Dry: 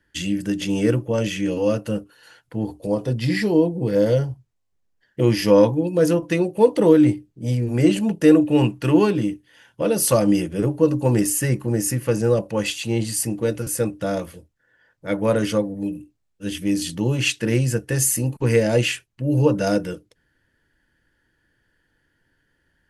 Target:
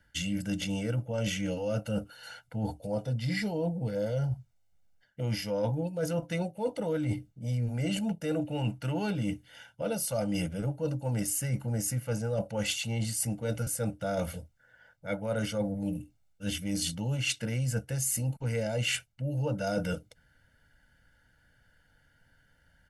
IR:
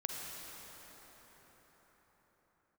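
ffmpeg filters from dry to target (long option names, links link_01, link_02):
-af "aecho=1:1:1.4:0.81,areverse,acompressor=threshold=-28dB:ratio=10,areverse"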